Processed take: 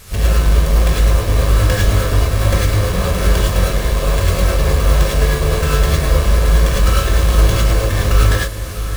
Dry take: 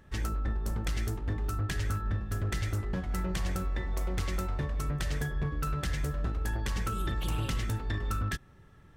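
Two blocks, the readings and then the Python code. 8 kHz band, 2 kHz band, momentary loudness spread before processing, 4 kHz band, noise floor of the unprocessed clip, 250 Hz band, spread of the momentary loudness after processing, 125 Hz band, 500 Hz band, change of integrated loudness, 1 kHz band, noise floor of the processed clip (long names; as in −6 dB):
+19.0 dB, +17.0 dB, 2 LU, +19.5 dB, −56 dBFS, +14.0 dB, 3 LU, +17.5 dB, +22.0 dB, +18.0 dB, +16.0 dB, −21 dBFS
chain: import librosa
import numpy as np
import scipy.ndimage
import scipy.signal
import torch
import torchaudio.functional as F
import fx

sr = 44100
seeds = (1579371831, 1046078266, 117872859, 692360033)

p1 = fx.halfwave_hold(x, sr)
p2 = p1 + 0.49 * np.pad(p1, (int(1.8 * sr / 1000.0), 0))[:len(p1)]
p3 = p2 + fx.echo_diffused(p2, sr, ms=658, feedback_pct=47, wet_db=-11.5, dry=0)
p4 = fx.dmg_noise_band(p3, sr, seeds[0], low_hz=930.0, high_hz=14000.0, level_db=-51.0)
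p5 = fx.rev_gated(p4, sr, seeds[1], gate_ms=130, shape='rising', drr_db=-5.0)
y = p5 * librosa.db_to_amplitude(6.5)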